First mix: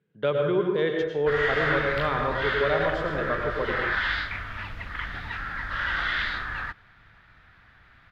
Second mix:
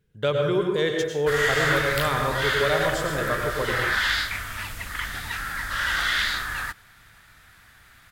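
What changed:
speech: remove high-pass 150 Hz 24 dB/octave; master: remove distance through air 310 m

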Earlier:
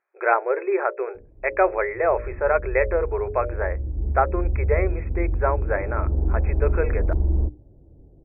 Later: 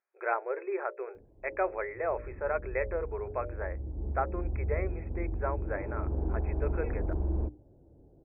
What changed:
speech -11.0 dB; background: add tilt EQ +2.5 dB/octave

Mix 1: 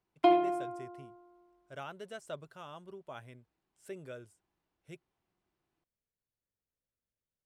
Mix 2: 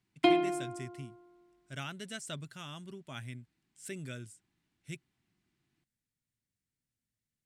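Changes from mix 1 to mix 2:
speech: add treble shelf 3.7 kHz +6 dB; master: add graphic EQ 125/250/500/1000/2000/4000/8000 Hz +9/+9/-8/-4/+7/+5/+8 dB

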